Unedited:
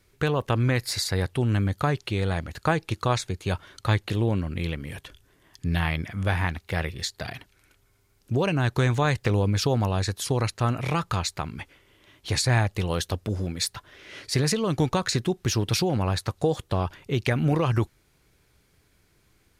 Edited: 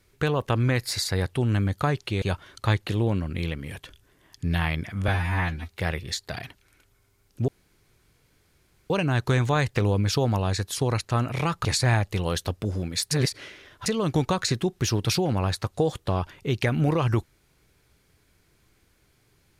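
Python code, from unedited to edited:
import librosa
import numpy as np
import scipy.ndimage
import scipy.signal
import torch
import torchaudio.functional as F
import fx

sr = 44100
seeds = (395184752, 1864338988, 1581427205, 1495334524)

y = fx.edit(x, sr, fx.cut(start_s=2.22, length_s=1.21),
    fx.stretch_span(start_s=6.29, length_s=0.3, factor=2.0),
    fx.insert_room_tone(at_s=8.39, length_s=1.42),
    fx.cut(start_s=11.14, length_s=1.15),
    fx.reverse_span(start_s=13.75, length_s=0.75), tone=tone)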